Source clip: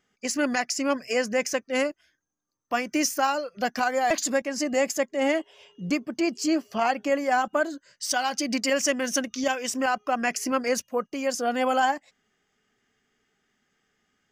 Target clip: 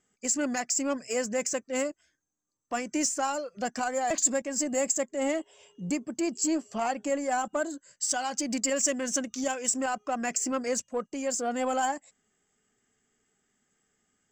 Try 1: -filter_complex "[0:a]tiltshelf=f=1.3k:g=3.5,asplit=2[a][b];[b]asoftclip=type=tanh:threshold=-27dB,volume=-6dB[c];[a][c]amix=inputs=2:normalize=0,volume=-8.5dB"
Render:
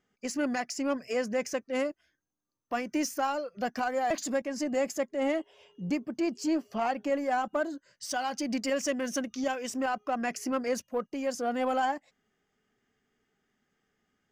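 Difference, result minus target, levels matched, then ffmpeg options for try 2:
8000 Hz band -10.0 dB
-filter_complex "[0:a]lowpass=f=7.6k:t=q:w=13,tiltshelf=f=1.3k:g=3.5,asplit=2[a][b];[b]asoftclip=type=tanh:threshold=-27dB,volume=-6dB[c];[a][c]amix=inputs=2:normalize=0,volume=-8.5dB"

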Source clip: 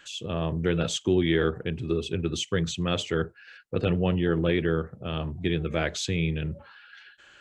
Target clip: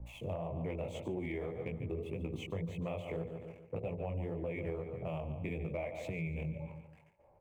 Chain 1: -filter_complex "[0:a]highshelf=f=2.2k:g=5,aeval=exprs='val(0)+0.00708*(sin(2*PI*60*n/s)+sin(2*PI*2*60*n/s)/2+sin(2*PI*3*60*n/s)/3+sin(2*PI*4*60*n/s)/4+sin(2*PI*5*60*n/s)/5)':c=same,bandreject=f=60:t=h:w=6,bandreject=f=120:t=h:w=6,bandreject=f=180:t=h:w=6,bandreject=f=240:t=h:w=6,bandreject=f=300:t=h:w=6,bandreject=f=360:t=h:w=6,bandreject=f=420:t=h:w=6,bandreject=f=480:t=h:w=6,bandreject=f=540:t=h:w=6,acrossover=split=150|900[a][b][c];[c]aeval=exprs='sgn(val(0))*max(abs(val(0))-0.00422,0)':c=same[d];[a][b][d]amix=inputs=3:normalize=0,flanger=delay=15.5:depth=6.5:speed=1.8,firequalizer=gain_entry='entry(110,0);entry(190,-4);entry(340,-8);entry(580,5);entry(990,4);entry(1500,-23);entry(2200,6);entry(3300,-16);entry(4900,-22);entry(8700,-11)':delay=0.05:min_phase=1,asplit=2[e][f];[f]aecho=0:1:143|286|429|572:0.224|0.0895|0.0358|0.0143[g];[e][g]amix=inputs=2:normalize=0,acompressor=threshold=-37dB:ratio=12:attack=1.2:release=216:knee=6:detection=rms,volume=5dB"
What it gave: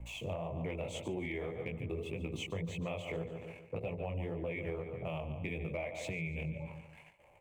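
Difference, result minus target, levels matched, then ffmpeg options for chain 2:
4000 Hz band +6.5 dB
-filter_complex "[0:a]highshelf=f=2.2k:g=-5,aeval=exprs='val(0)+0.00708*(sin(2*PI*60*n/s)+sin(2*PI*2*60*n/s)/2+sin(2*PI*3*60*n/s)/3+sin(2*PI*4*60*n/s)/4+sin(2*PI*5*60*n/s)/5)':c=same,bandreject=f=60:t=h:w=6,bandreject=f=120:t=h:w=6,bandreject=f=180:t=h:w=6,bandreject=f=240:t=h:w=6,bandreject=f=300:t=h:w=6,bandreject=f=360:t=h:w=6,bandreject=f=420:t=h:w=6,bandreject=f=480:t=h:w=6,bandreject=f=540:t=h:w=6,acrossover=split=150|900[a][b][c];[c]aeval=exprs='sgn(val(0))*max(abs(val(0))-0.00422,0)':c=same[d];[a][b][d]amix=inputs=3:normalize=0,flanger=delay=15.5:depth=6.5:speed=1.8,firequalizer=gain_entry='entry(110,0);entry(190,-4);entry(340,-8);entry(580,5);entry(990,4);entry(1500,-23);entry(2200,6);entry(3300,-16);entry(4900,-22);entry(8700,-11)':delay=0.05:min_phase=1,asplit=2[e][f];[f]aecho=0:1:143|286|429|572:0.224|0.0895|0.0358|0.0143[g];[e][g]amix=inputs=2:normalize=0,acompressor=threshold=-37dB:ratio=12:attack=1.2:release=216:knee=6:detection=rms,volume=5dB"

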